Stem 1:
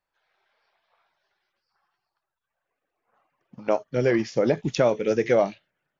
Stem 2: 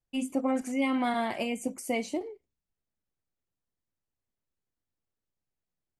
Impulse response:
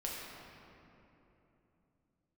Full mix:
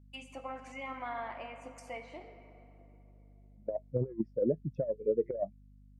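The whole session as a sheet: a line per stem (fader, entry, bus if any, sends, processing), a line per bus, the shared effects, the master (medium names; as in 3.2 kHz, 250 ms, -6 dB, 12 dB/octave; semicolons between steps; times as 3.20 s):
4.14 s -4 dB -> 4.42 s -11.5 dB, 0.00 s, no send, bass shelf 69 Hz +3.5 dB; spectral contrast expander 2.5:1
-11.0 dB, 0.00 s, send -5.5 dB, high-pass 1 kHz 12 dB/octave; low-pass that closes with the level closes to 1.5 kHz, closed at -35 dBFS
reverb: on, RT60 3.2 s, pre-delay 6 ms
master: bass shelf 210 Hz +10 dB; compressor with a negative ratio -30 dBFS, ratio -0.5; hum 50 Hz, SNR 20 dB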